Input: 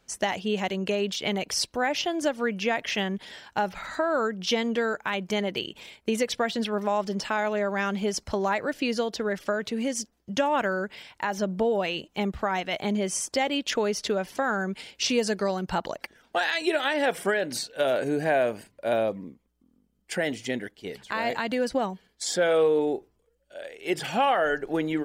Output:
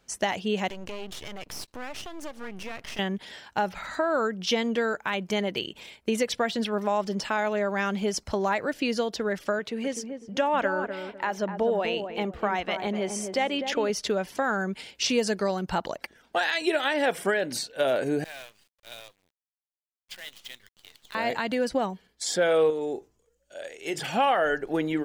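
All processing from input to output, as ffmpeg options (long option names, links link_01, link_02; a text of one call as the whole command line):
ffmpeg -i in.wav -filter_complex "[0:a]asettb=1/sr,asplit=3[link_01][link_02][link_03];[link_01]atrim=end=0.704[link_04];[link_02]atrim=start=0.7:end=2.99,asetpts=PTS-STARTPTS,afade=type=in:duration=0.004:curve=qsin,afade=type=out:start_time=2.286:duration=0.004:curve=qsin,acompressor=threshold=-33dB:ratio=2.5:attack=3.2:release=140:knee=1:detection=peak,aeval=exprs='max(val(0),0)':channel_layout=same[link_05];[link_03]atrim=start=2.986[link_06];[link_04][link_05]acrossfade=duration=0.004:curve1=hsin:curve2=qsin[link_07];[link_07][link_06]acrossfade=duration=0.004:curve1=qsin:curve2=hsin,asettb=1/sr,asplit=3[link_08][link_09][link_10];[link_08]atrim=end=9.594[link_11];[link_09]atrim=start=9.59:end=13.9,asetpts=PTS-STARTPTS,afade=type=in:duration=0.004:curve=qsin,afade=type=out:start_time=4.306:duration=0.004:curve=qsin,bass=frequency=250:gain=-6,treble=frequency=4000:gain=-6,asplit=2[link_12][link_13];[link_13]adelay=250,lowpass=frequency=820:poles=1,volume=-5.5dB,asplit=2[link_14][link_15];[link_15]adelay=250,lowpass=frequency=820:poles=1,volume=0.36,asplit=2[link_16][link_17];[link_17]adelay=250,lowpass=frequency=820:poles=1,volume=0.36,asplit=2[link_18][link_19];[link_19]adelay=250,lowpass=frequency=820:poles=1,volume=0.36[link_20];[link_12][link_14][link_16][link_18][link_20]amix=inputs=5:normalize=0,atrim=end_sample=190071[link_21];[link_10]atrim=start=13.896[link_22];[link_11][link_21]acrossfade=duration=0.004:curve1=hsin:curve2=qsin[link_23];[link_23][link_22]acrossfade=duration=0.004:curve1=qsin:curve2=hsin,asettb=1/sr,asplit=3[link_24][link_25][link_26];[link_24]atrim=end=18.244[link_27];[link_25]atrim=start=18.24:end=21.15,asetpts=PTS-STARTPTS,afade=type=in:duration=0.004:curve=qsin,afade=type=out:start_time=2.906:duration=0.004:curve=qsin,bandpass=frequency=3700:width_type=q:width=2.7,acrusher=bits=8:dc=4:mix=0:aa=0.000001[link_28];[link_26]atrim=start=21.146[link_29];[link_27][link_28]acrossfade=duration=0.004:curve1=hsin:curve2=qsin[link_30];[link_30][link_29]acrossfade=duration=0.004:curve1=qsin:curve2=hsin,asettb=1/sr,asplit=3[link_31][link_32][link_33];[link_31]atrim=end=22.704[link_34];[link_32]atrim=start=22.7:end=23.98,asetpts=PTS-STARTPTS,afade=type=in:duration=0.004:curve=qsin,afade=type=out:start_time=1.276:duration=0.004:curve=qsin,equalizer=frequency=6700:width=2.3:gain=12,acompressor=threshold=-27dB:ratio=3:attack=3.2:release=140:knee=1:detection=peak,asplit=2[link_35][link_36];[link_36]adelay=25,volume=-14dB[link_37];[link_35][link_37]amix=inputs=2:normalize=0,atrim=end_sample=56448[link_38];[link_33]atrim=start=23.976[link_39];[link_34][link_38]acrossfade=duration=0.004:curve1=hsin:curve2=qsin[link_40];[link_40][link_39]acrossfade=duration=0.004:curve1=qsin:curve2=hsin" out.wav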